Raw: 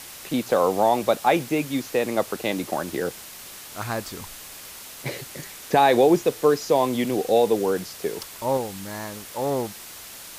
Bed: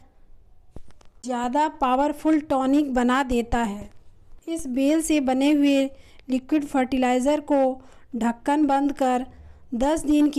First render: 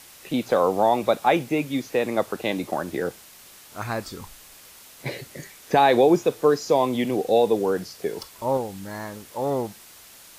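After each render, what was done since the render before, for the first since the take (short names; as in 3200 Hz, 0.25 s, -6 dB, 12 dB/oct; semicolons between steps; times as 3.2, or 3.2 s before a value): noise print and reduce 7 dB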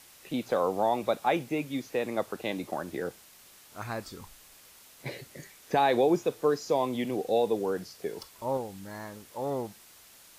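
gain -7 dB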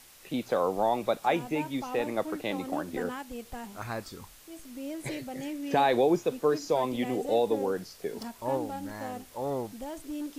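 add bed -17.5 dB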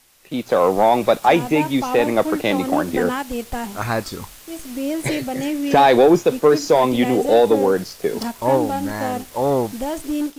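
AGC gain up to 10 dB; sample leveller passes 1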